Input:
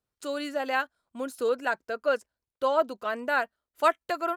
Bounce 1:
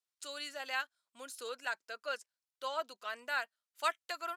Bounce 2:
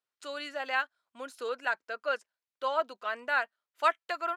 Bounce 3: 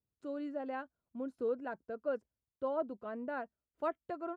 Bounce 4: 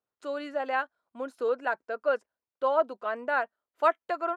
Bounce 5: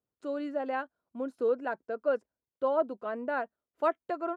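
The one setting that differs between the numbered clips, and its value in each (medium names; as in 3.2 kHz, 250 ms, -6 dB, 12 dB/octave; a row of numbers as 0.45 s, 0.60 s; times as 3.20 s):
band-pass filter, frequency: 6 kHz, 2.3 kHz, 110 Hz, 790 Hz, 300 Hz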